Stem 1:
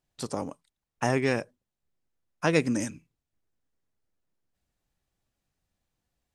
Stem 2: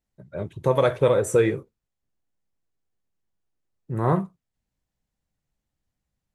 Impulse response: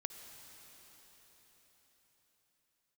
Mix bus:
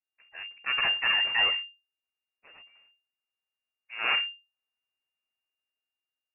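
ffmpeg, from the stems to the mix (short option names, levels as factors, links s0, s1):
-filter_complex "[0:a]flanger=delay=18.5:depth=7.6:speed=1.9,tremolo=f=0.78:d=0.93,volume=0.1[s0];[1:a]dynaudnorm=f=310:g=7:m=1.88,volume=0.794[s1];[s0][s1]amix=inputs=2:normalize=0,highpass=f=890:p=1,aeval=exprs='abs(val(0))':c=same,lowpass=f=2400:t=q:w=0.5098,lowpass=f=2400:t=q:w=0.6013,lowpass=f=2400:t=q:w=0.9,lowpass=f=2400:t=q:w=2.563,afreqshift=-2800"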